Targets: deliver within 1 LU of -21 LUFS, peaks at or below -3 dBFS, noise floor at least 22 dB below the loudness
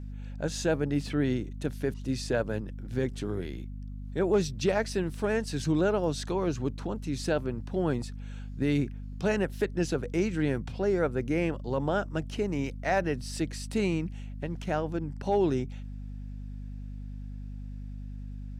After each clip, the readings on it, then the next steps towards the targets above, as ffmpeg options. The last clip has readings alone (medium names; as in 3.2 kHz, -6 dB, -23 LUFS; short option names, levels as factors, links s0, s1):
hum 50 Hz; highest harmonic 250 Hz; hum level -36 dBFS; loudness -30.5 LUFS; peak level -16.0 dBFS; loudness target -21.0 LUFS
-> -af "bandreject=f=50:t=h:w=4,bandreject=f=100:t=h:w=4,bandreject=f=150:t=h:w=4,bandreject=f=200:t=h:w=4,bandreject=f=250:t=h:w=4"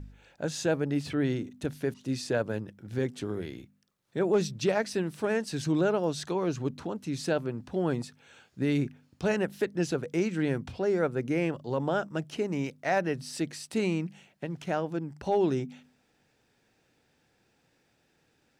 hum not found; loudness -30.5 LUFS; peak level -16.5 dBFS; loudness target -21.0 LUFS
-> -af "volume=2.99"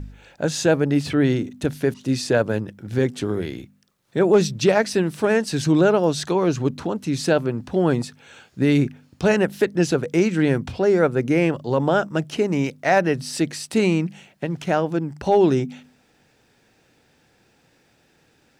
loudness -21.0 LUFS; peak level -7.0 dBFS; noise floor -61 dBFS